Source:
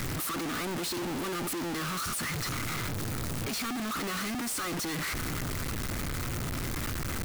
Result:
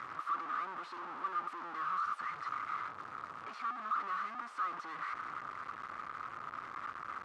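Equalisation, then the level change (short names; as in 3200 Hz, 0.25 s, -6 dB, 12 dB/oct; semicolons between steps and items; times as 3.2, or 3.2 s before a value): band-pass 1200 Hz, Q 5.5; air absorption 63 m; +5.0 dB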